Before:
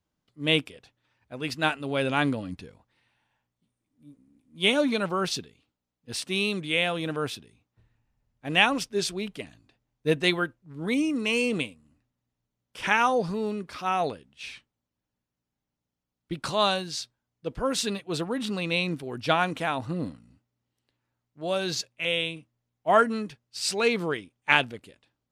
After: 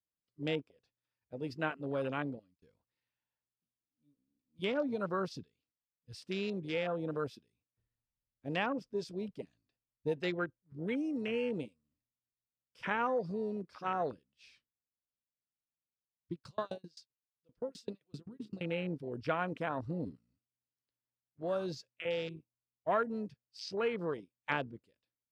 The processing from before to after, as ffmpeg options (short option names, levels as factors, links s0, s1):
-filter_complex "[0:a]asettb=1/sr,asplit=3[s0][s1][s2];[s0]atrim=end=16.324[s3];[s1]atrim=start=16.32:end=18.61,asetpts=PTS-STARTPTS,afade=t=in:d=0.004:c=qsin,afade=t=out:st=2.286:d=0.004:c=qsin,aeval=exprs='val(0)*pow(10,-27*if(lt(mod(7.7*n/s,1),2*abs(7.7)/1000),1-mod(7.7*n/s,1)/(2*abs(7.7)/1000),(mod(7.7*n/s,1)-2*abs(7.7)/1000)/(1-2*abs(7.7)/1000))/20)':c=same[s4];[s2]atrim=start=18.606[s5];[s3][s4]acrossfade=d=0.004:c1=hsin:c2=qsin[s6];[s6][s5]acrossfade=d=0.004:c1=qsin:c2=hsin,asplit=2[s7][s8];[s7]atrim=end=2.62,asetpts=PTS-STARTPTS,afade=t=out:st=1.93:d=0.69[s9];[s8]atrim=start=2.62,asetpts=PTS-STARTPTS,afade=t=in:d=0.004:c=hsin[s10];[s9][s10]concat=n=2:v=0:a=1,afwtdn=0.0316,equalizer=f=500:t=o:w=0.33:g=4,equalizer=f=800:t=o:w=0.33:g=-5,equalizer=f=5000:t=o:w=0.33:g=9,equalizer=f=10000:t=o:w=0.33:g=-4,acrossover=split=750|1600[s11][s12][s13];[s11]acompressor=threshold=0.0398:ratio=4[s14];[s12]acompressor=threshold=0.0398:ratio=4[s15];[s13]acompressor=threshold=0.00891:ratio=4[s16];[s14][s15][s16]amix=inputs=3:normalize=0,volume=0.531"